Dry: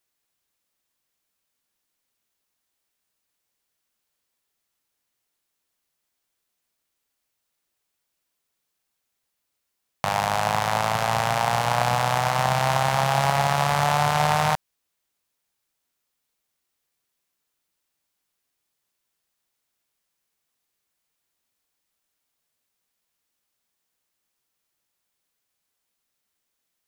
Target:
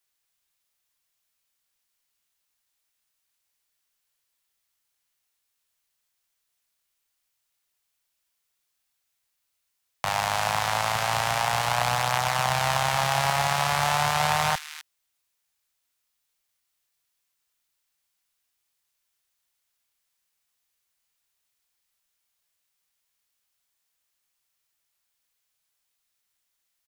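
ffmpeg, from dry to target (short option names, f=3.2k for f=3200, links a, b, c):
-filter_complex "[0:a]equalizer=f=270:w=0.54:g=-9.5,acrossover=split=150|1600[a][b][c];[a]acrusher=bits=2:mode=log:mix=0:aa=0.000001[d];[c]aecho=1:1:32.07|259.5:0.562|0.355[e];[d][b][e]amix=inputs=3:normalize=0"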